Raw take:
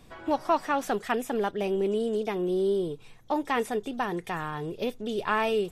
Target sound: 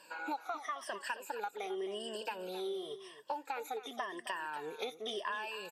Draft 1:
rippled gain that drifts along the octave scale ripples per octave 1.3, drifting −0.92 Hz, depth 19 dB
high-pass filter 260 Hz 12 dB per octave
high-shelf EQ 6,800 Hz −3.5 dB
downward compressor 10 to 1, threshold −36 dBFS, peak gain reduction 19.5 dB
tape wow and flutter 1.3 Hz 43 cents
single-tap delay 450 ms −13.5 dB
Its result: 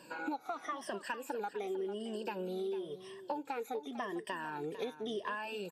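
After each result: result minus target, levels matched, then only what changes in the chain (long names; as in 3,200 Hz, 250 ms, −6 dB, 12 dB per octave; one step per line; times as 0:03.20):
echo 184 ms late; 250 Hz band +5.5 dB
change: single-tap delay 266 ms −13.5 dB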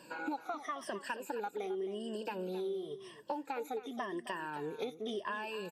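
250 Hz band +5.5 dB
change: high-pass filter 700 Hz 12 dB per octave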